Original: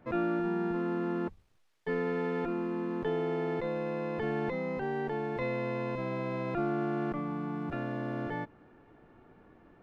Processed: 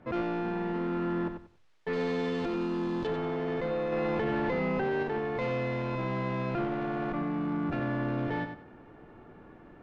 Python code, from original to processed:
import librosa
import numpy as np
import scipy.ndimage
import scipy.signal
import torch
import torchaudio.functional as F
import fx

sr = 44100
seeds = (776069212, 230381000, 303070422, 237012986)

p1 = fx.vibrato(x, sr, rate_hz=0.61, depth_cents=6.1)
p2 = fx.rider(p1, sr, range_db=10, speed_s=0.5)
p3 = p1 + (p2 * librosa.db_to_amplitude(-3.0))
p4 = fx.high_shelf_res(p3, sr, hz=2700.0, db=11.5, q=1.5, at=(1.93, 3.07))
p5 = 10.0 ** (-26.5 / 20.0) * np.tanh(p4 / 10.0 ** (-26.5 / 20.0))
p6 = fx.air_absorb(p5, sr, metres=64.0)
p7 = fx.echo_feedback(p6, sr, ms=93, feedback_pct=22, wet_db=-8.0)
y = fx.env_flatten(p7, sr, amount_pct=100, at=(3.92, 5.03))